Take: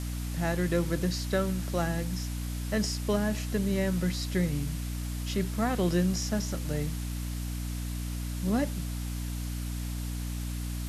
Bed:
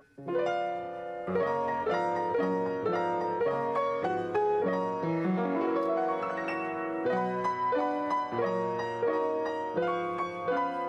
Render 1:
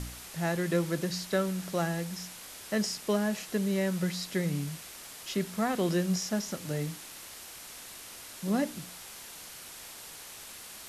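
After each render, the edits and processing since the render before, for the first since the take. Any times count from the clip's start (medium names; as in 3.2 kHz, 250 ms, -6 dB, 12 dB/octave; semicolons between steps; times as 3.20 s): de-hum 60 Hz, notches 5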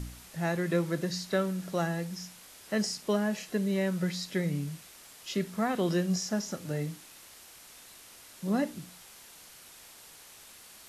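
noise print and reduce 6 dB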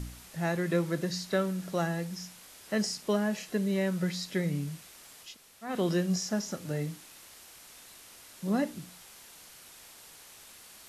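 5.29–5.69 s: room tone, crossfade 0.16 s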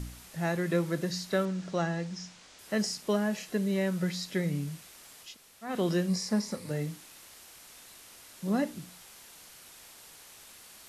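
1.45–2.59 s: low-pass 7.1 kHz 24 dB/octave; 6.08–6.71 s: rippled EQ curve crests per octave 0.93, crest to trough 9 dB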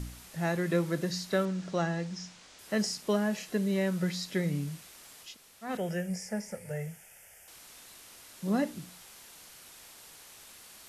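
5.77–7.48 s: static phaser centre 1.1 kHz, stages 6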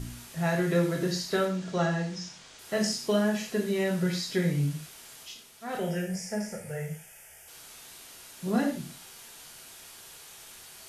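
gated-style reverb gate 160 ms falling, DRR -0.5 dB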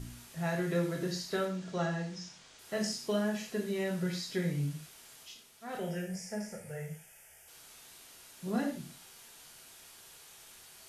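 trim -6 dB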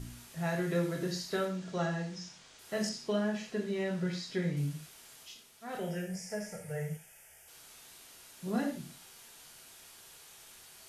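2.89–4.57 s: distance through air 60 m; 6.29–6.97 s: comb 6.6 ms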